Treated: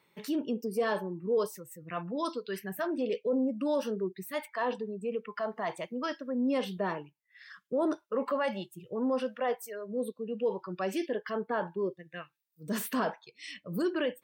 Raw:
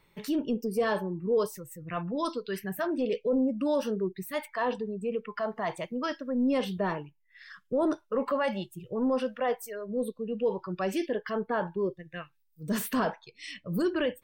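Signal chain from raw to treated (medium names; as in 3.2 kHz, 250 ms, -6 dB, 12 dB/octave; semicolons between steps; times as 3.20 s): high-pass 180 Hz 12 dB/octave; trim -2 dB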